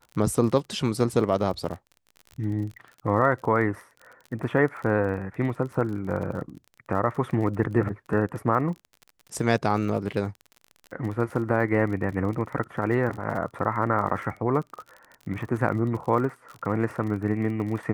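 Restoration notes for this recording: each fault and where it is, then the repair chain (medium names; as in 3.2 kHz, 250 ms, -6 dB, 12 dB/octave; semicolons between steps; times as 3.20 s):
crackle 40 per s -34 dBFS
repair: de-click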